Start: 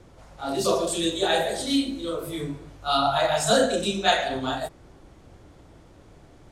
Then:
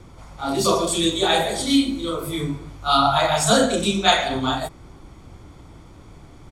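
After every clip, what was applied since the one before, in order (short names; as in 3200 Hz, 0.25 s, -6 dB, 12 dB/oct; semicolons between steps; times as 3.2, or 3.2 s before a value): comb 0.9 ms, depth 39%; gain +5 dB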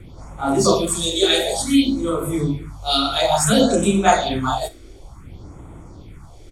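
Schroeder reverb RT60 0.32 s, combs from 33 ms, DRR 16 dB; phaser stages 4, 0.57 Hz, lowest notch 150–4800 Hz; gain +4 dB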